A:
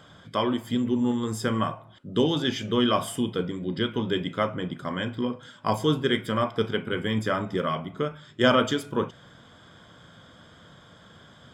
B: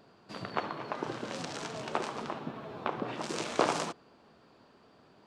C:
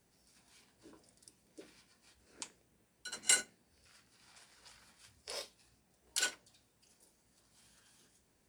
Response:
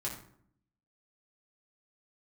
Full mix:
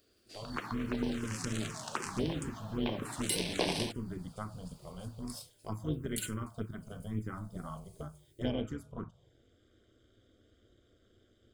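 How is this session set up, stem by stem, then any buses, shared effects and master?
−9.5 dB, 0.00 s, no send, spectral tilt −4 dB per octave; notch comb filter 840 Hz; amplitude modulation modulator 210 Hz, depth 60%
+1.5 dB, 0.00 s, no send, no processing
−6.5 dB, 0.00 s, no send, notch filter 5,700 Hz, Q 12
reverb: not used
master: first-order pre-emphasis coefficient 0.8; automatic gain control gain up to 9.5 dB; phaser swept by the level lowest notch 150 Hz, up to 1,300 Hz, full sweep at −27.5 dBFS

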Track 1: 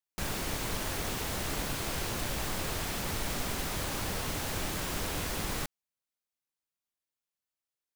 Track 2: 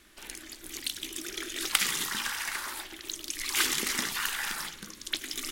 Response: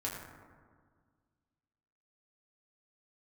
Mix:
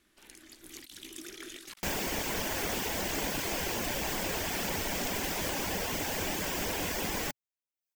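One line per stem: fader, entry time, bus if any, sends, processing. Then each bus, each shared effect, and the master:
+0.5 dB, 1.65 s, no send, reverb reduction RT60 0.57 s; thirty-one-band graphic EQ 125 Hz −10 dB, 1,250 Hz −9 dB, 4,000 Hz −7 dB, 10,000 Hz −9 dB
−16.0 dB, 0.00 s, no send, compressor whose output falls as the input rises −37 dBFS, ratio −0.5; low-shelf EQ 340 Hz +9 dB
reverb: not used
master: low-shelf EQ 100 Hz −11.5 dB; automatic gain control gain up to 5 dB

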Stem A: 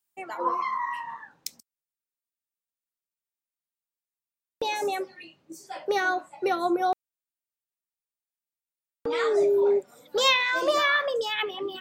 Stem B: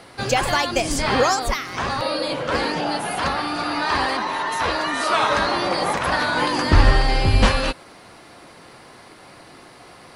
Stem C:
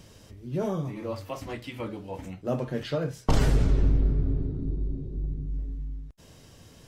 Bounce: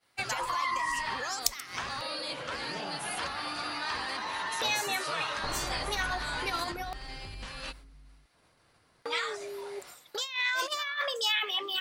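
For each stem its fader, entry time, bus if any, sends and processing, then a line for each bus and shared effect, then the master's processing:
−0.5 dB, 0.00 s, muted 0:02.12–0:02.72, bus A, no send, low-shelf EQ 490 Hz −9.5 dB; compressor whose output falls as the input rises −30 dBFS, ratio −0.5
−11.5 dB, 0.00 s, bus A, no send, low-shelf EQ 330 Hz +9.5 dB; downward compressor 6 to 1, threshold −22 dBFS, peak gain reduction 20.5 dB
−11.0 dB, 2.15 s, no bus, no send, Butterworth low-pass 1,600 Hz 96 dB per octave
bus A: 0.0 dB, downward expander −41 dBFS; downward compressor 5 to 1, threshold −31 dBFS, peak gain reduction 6.5 dB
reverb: not used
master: tilt shelving filter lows −9.5 dB, about 760 Hz

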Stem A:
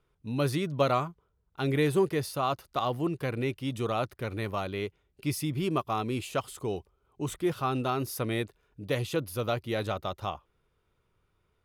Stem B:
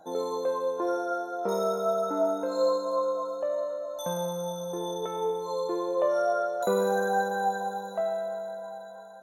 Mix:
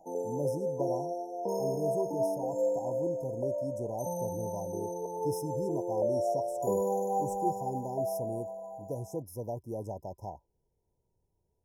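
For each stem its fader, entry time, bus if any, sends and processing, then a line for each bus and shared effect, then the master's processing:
−7.5 dB, 0.00 s, no send, speech leveller within 3 dB 2 s
−4.0 dB, 0.00 s, no send, no processing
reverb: not used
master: brick-wall band-stop 1,000–5,100 Hz

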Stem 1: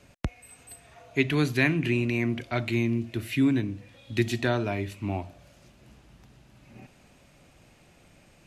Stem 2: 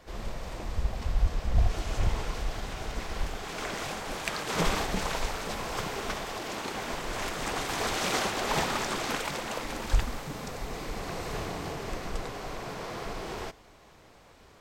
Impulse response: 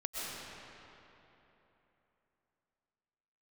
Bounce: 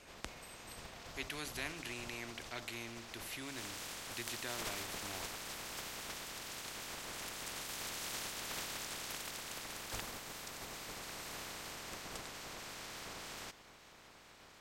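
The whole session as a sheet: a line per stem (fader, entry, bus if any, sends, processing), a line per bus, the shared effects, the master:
−9.0 dB, 0.00 s, no send, parametric band 140 Hz −14 dB 1.7 octaves
0:03.38 −24 dB → 0:03.61 −14.5 dB, 0.00 s, no send, ceiling on every frequency bin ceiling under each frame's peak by 15 dB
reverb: not used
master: every bin compressed towards the loudest bin 2 to 1

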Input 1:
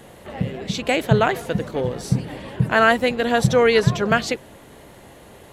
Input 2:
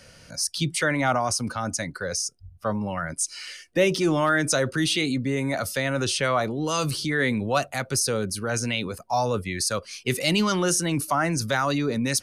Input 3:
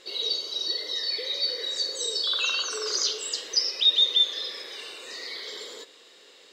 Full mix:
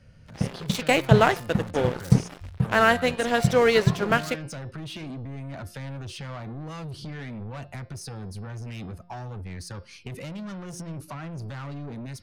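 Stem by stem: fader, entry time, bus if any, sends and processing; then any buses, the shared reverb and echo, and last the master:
0:02.26 −3 dB → 0:02.60 −10 dB, 0.00 s, no bus, no send, dead-zone distortion −29.5 dBFS
−11.0 dB, 0.00 s, bus A, no send, bass and treble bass +15 dB, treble −11 dB; brickwall limiter −14 dBFS, peak gain reduction 9 dB; soft clipping −25 dBFS, distortion −9 dB
muted
bus A: 0.0 dB, downward compressor, threshold −43 dBFS, peak gain reduction 5.5 dB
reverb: not used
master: automatic gain control gain up to 8 dB; hum removal 175.4 Hz, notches 31

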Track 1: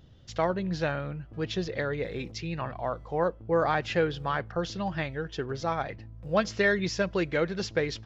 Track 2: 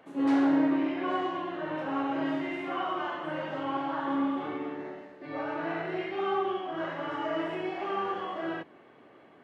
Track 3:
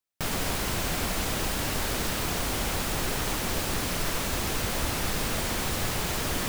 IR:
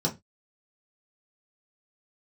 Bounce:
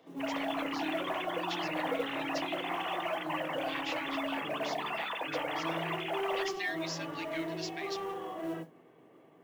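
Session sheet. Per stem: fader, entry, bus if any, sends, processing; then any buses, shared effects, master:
−4.0 dB, 0.00 s, no send, inverse Chebyshev high-pass filter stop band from 990 Hz, stop band 40 dB
−8.0 dB, 0.00 s, send −13 dB, low-shelf EQ 100 Hz +10 dB; gain into a clipping stage and back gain 30 dB
−9.5 dB, 0.00 s, send −8.5 dB, three sine waves on the formant tracks; brickwall limiter −21.5 dBFS, peak gain reduction 6.5 dB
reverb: on, RT60 0.20 s, pre-delay 3 ms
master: noise that follows the level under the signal 27 dB

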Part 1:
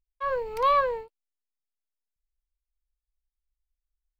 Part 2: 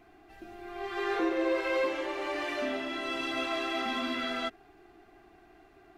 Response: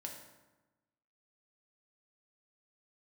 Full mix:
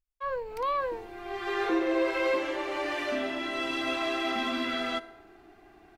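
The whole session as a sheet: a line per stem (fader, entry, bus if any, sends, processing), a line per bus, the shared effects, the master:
−5.0 dB, 0.00 s, send −15.5 dB, brickwall limiter −18 dBFS, peak gain reduction 4.5 dB
0.0 dB, 0.50 s, send −7 dB, no processing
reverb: on, RT60 1.1 s, pre-delay 3 ms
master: no processing

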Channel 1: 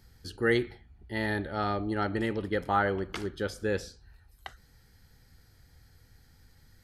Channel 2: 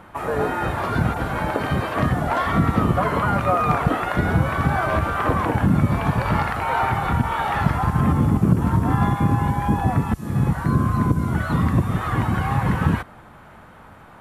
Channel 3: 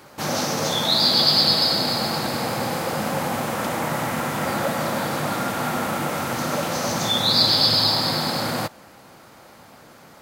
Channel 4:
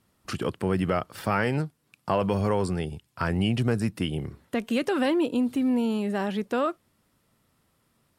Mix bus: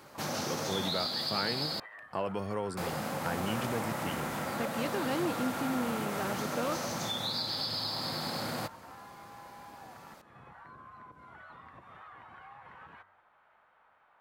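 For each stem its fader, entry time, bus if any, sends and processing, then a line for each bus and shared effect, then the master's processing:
−0.5 dB, 0.70 s, bus A, no send, spectral envelope exaggerated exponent 2; resonant band-pass 1,900 Hz, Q 3.1
−17.0 dB, 0.00 s, bus A, no send, high-shelf EQ 7,600 Hz −11.5 dB; hum removal 94.12 Hz, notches 22
−7.0 dB, 0.00 s, muted 0:01.80–0:02.77, no bus, no send, downward compressor 6 to 1, threshold −25 dBFS, peak gain reduction 11.5 dB
−8.5 dB, 0.05 s, no bus, no send, low-shelf EQ 130 Hz −9.5 dB; pitch vibrato 0.41 Hz 33 cents
bus A: 0.0 dB, three-way crossover with the lows and the highs turned down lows −22 dB, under 540 Hz, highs −12 dB, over 4,400 Hz; downward compressor 6 to 1, threshold −48 dBFS, peak gain reduction 18 dB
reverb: not used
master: no processing

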